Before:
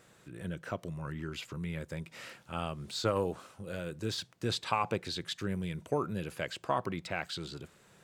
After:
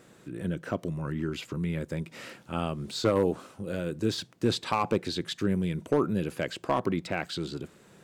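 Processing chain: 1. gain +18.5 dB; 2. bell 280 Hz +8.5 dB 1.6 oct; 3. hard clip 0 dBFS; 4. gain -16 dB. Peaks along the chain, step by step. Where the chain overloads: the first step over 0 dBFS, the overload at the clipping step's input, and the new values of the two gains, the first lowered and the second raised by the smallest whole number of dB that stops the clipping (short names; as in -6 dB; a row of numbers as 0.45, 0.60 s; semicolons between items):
+4.5, +6.5, 0.0, -16.0 dBFS; step 1, 6.5 dB; step 1 +11.5 dB, step 4 -9 dB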